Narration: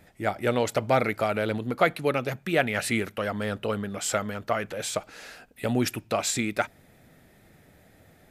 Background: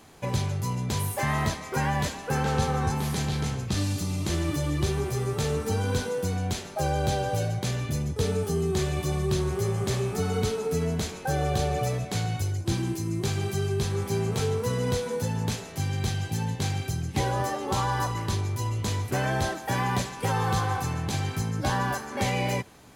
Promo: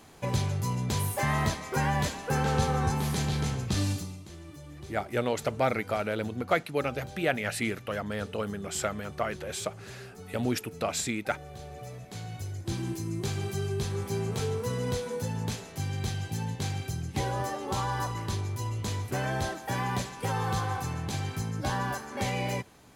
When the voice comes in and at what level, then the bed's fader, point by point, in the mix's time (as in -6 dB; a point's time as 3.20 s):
4.70 s, -4.0 dB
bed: 3.91 s -1 dB
4.26 s -18.5 dB
11.52 s -18.5 dB
12.90 s -4 dB